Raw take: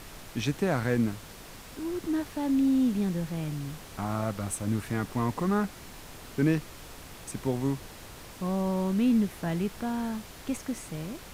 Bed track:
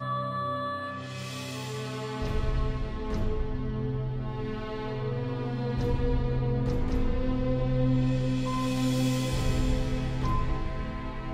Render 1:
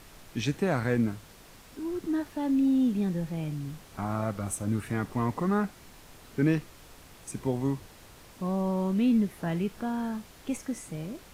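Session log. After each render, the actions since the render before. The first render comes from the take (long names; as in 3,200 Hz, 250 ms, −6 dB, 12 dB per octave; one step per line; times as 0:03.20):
noise reduction from a noise print 6 dB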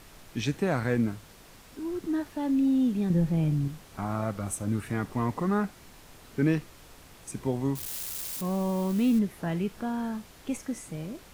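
0:03.10–0:03.68: low-shelf EQ 440 Hz +9 dB
0:07.75–0:09.19: spike at every zero crossing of −28.5 dBFS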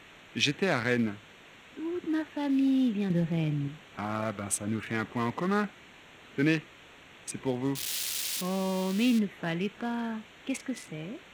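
adaptive Wiener filter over 9 samples
meter weighting curve D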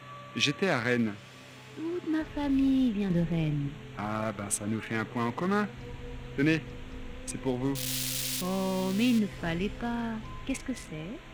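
mix in bed track −15 dB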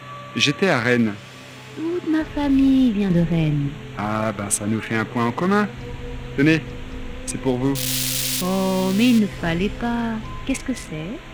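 level +9.5 dB
brickwall limiter −3 dBFS, peak gain reduction 2 dB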